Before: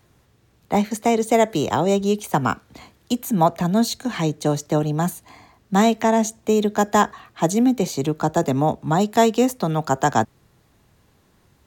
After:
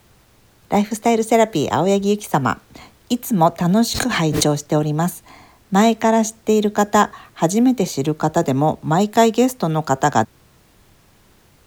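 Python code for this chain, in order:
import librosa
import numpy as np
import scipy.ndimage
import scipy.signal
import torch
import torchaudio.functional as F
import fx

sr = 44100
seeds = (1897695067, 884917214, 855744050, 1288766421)

y = fx.dmg_noise_colour(x, sr, seeds[0], colour='pink', level_db=-58.0)
y = fx.pre_swell(y, sr, db_per_s=33.0, at=(3.66, 4.66))
y = y * librosa.db_to_amplitude(2.5)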